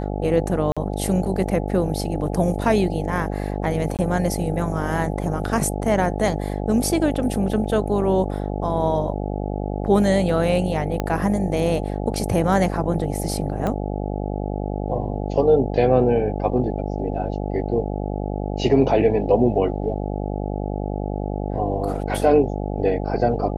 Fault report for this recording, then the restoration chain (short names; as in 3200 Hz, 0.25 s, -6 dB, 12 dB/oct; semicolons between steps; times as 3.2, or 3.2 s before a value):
buzz 50 Hz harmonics 17 -26 dBFS
0.72–0.77 gap 46 ms
3.97–3.99 gap 18 ms
11 pop -10 dBFS
13.67 pop -13 dBFS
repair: de-click; de-hum 50 Hz, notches 17; interpolate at 0.72, 46 ms; interpolate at 3.97, 18 ms